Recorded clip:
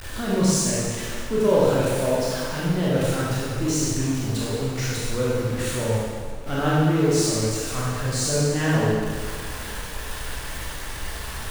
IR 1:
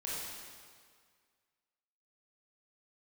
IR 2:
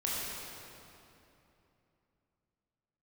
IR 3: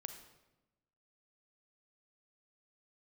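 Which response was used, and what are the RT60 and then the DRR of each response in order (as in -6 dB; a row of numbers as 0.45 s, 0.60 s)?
1; 1.9 s, 3.0 s, 1.0 s; -7.5 dB, -6.5 dB, 7.0 dB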